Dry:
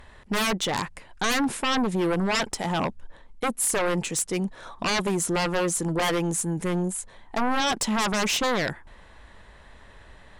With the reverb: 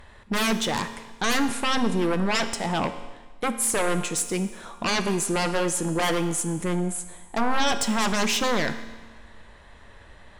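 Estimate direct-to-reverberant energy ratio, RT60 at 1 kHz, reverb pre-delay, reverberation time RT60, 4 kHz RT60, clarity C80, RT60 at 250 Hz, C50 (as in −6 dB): 8.5 dB, 1.3 s, 4 ms, 1.3 s, 1.3 s, 12.5 dB, 1.3 s, 10.5 dB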